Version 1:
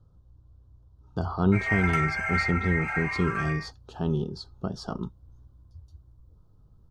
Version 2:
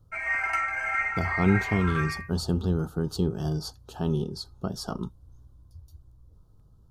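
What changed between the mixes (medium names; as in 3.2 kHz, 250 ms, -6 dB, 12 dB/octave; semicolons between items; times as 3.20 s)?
speech: remove distance through air 100 m; background: entry -1.40 s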